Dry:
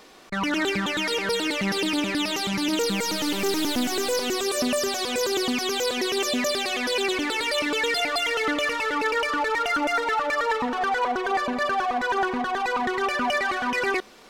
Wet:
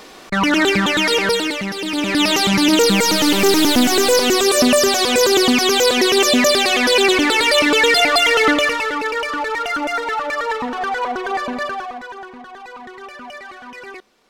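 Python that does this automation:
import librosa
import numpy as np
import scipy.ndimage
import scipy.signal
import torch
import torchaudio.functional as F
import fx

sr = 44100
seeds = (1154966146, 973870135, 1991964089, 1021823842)

y = fx.gain(x, sr, db=fx.line((1.24, 9.5), (1.77, -1.0), (2.25, 11.0), (8.47, 11.0), (9.03, 2.5), (11.58, 2.5), (12.2, -10.5)))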